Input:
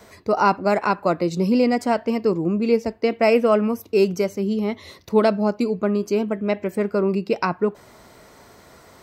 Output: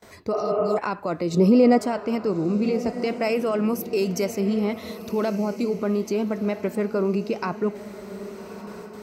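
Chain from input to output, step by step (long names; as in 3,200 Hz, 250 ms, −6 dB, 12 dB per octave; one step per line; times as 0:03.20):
brickwall limiter −16 dBFS, peak gain reduction 11.5 dB
0:00.37–0:00.75: healed spectral selection 260–3,200 Hz before
0:03.01–0:04.41: high-shelf EQ 3,900 Hz +7.5 dB
noise gate with hold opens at −38 dBFS
0:01.34–0:01.79: parametric band 440 Hz +9 dB 2.9 octaves
feedback delay with all-pass diffusion 1,260 ms, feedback 41%, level −13 dB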